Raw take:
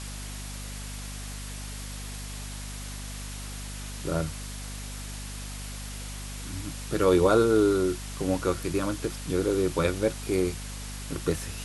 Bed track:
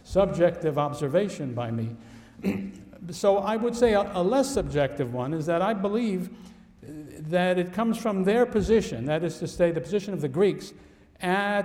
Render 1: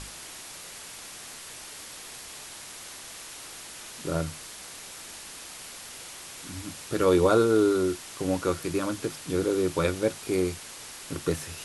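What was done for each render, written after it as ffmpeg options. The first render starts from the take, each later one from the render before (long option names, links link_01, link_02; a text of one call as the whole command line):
ffmpeg -i in.wav -af "bandreject=frequency=50:width_type=h:width=6,bandreject=frequency=100:width_type=h:width=6,bandreject=frequency=150:width_type=h:width=6,bandreject=frequency=200:width_type=h:width=6,bandreject=frequency=250:width_type=h:width=6" out.wav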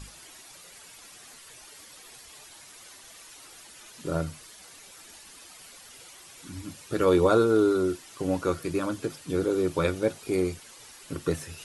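ffmpeg -i in.wav -af "afftdn=noise_reduction=10:noise_floor=-43" out.wav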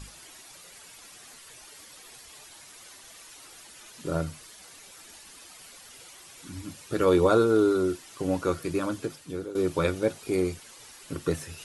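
ffmpeg -i in.wav -filter_complex "[0:a]asplit=2[link_01][link_02];[link_01]atrim=end=9.55,asetpts=PTS-STARTPTS,afade=type=out:start_time=8.96:duration=0.59:silence=0.188365[link_03];[link_02]atrim=start=9.55,asetpts=PTS-STARTPTS,afade=type=in:duration=0.004:curve=hsin:silence=0.188365[link_04];[link_03][link_04]concat=n=2:v=0:a=1" out.wav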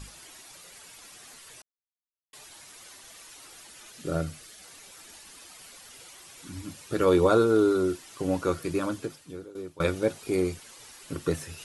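ffmpeg -i in.wav -filter_complex "[0:a]asettb=1/sr,asplit=3[link_01][link_02][link_03];[link_01]atrim=end=3.924[link_04];[link_02]atrim=start=3.92:end=4.66,asetpts=PTS-STARTPTS,afade=type=in:duration=0.004:curve=qsin,afade=type=out:start_time=0.736:duration=0.004:curve=qsin,equalizer=frequency=980:width=7.5:gain=-12[link_05];[link_03]atrim=start=4.656[link_06];[link_04][link_05]acrossfade=duration=0.004:curve1=hsin:curve2=qsin[link_07];[link_07][link_06]acrossfade=duration=0.004:curve1=qsin:curve2=hsin,asplit=4[link_08][link_09][link_10][link_11];[link_08]atrim=end=1.62,asetpts=PTS-STARTPTS,afade=type=out:start_time=1.616:duration=0.004:curve=hsin[link_12];[link_09]atrim=start=1.62:end=2.33,asetpts=PTS-STARTPTS,volume=0[link_13];[link_10]atrim=start=2.33:end=9.8,asetpts=PTS-STARTPTS,afade=type=in:duration=0.004:curve=hsin,afade=type=out:start_time=6.54:duration=0.93:silence=0.0707946[link_14];[link_11]atrim=start=9.8,asetpts=PTS-STARTPTS,afade=type=in:duration=0.004:curve=hsin:silence=0.0707946[link_15];[link_12][link_13][link_14][link_15]concat=n=4:v=0:a=1" out.wav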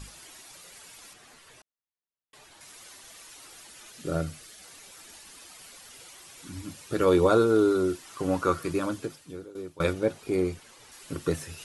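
ffmpeg -i in.wav -filter_complex "[0:a]asettb=1/sr,asplit=3[link_01][link_02][link_03];[link_01]atrim=end=1.134[link_04];[link_02]atrim=start=1.13:end=2.61,asetpts=PTS-STARTPTS,afade=type=in:duration=0.004:curve=qsin,afade=type=out:start_time=1.476:duration=0.004:curve=qsin,highshelf=frequency=4100:gain=-10[link_05];[link_03]atrim=start=2.606[link_06];[link_04][link_05]acrossfade=duration=0.004:curve1=hsin:curve2=qsin[link_07];[link_07][link_06]acrossfade=duration=0.004:curve1=qsin:curve2=hsin,asettb=1/sr,asplit=3[link_08][link_09][link_10];[link_08]atrim=end=8.054[link_11];[link_09]atrim=start=8.05:end=8.73,asetpts=PTS-STARTPTS,afade=type=in:duration=0.004:curve=qsin,afade=type=out:start_time=0.676:duration=0.004:curve=qsin,equalizer=frequency=1200:width=2:gain=8[link_12];[link_10]atrim=start=8.726[link_13];[link_11][link_12]acrossfade=duration=0.004:curve1=hsin:curve2=qsin[link_14];[link_14][link_13]acrossfade=duration=0.004:curve1=qsin:curve2=hsin,asettb=1/sr,asplit=3[link_15][link_16][link_17];[link_15]atrim=end=9.934[link_18];[link_16]atrim=start=9.93:end=10.92,asetpts=PTS-STARTPTS,afade=type=in:duration=0.004:curve=qsin,afade=type=out:start_time=0.986:duration=0.004:curve=qsin,highshelf=frequency=3600:gain=-7[link_19];[link_17]atrim=start=10.916[link_20];[link_18][link_19]acrossfade=duration=0.004:curve1=hsin:curve2=qsin[link_21];[link_21][link_20]acrossfade=duration=0.004:curve1=qsin:curve2=hsin" out.wav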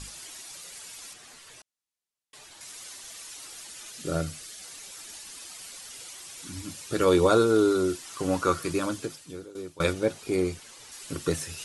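ffmpeg -i in.wav -af "lowpass=10000,highshelf=frequency=3500:gain=9.5" out.wav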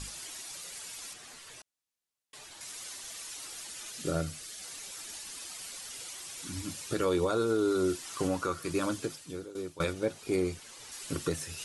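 ffmpeg -i in.wav -af "alimiter=limit=-19dB:level=0:latency=1:release=491" out.wav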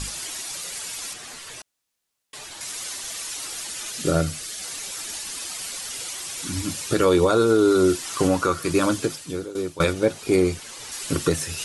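ffmpeg -i in.wav -af "volume=10.5dB" out.wav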